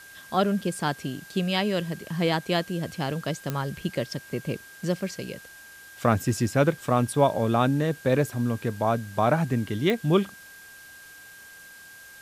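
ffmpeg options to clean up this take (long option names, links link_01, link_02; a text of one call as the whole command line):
ffmpeg -i in.wav -af "adeclick=threshold=4,bandreject=frequency=1600:width=30,afftdn=noise_reduction=23:noise_floor=-47" out.wav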